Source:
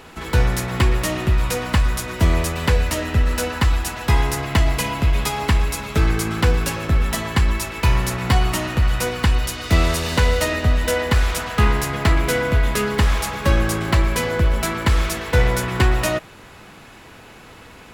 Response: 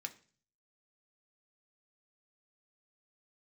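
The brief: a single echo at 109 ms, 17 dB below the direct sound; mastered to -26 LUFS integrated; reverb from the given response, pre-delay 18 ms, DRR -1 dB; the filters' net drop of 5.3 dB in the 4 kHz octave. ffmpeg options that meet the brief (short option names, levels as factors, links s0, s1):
-filter_complex "[0:a]equalizer=f=4000:t=o:g=-7.5,aecho=1:1:109:0.141,asplit=2[s0][s1];[1:a]atrim=start_sample=2205,adelay=18[s2];[s1][s2]afir=irnorm=-1:irlink=0,volume=1.41[s3];[s0][s3]amix=inputs=2:normalize=0,volume=0.447"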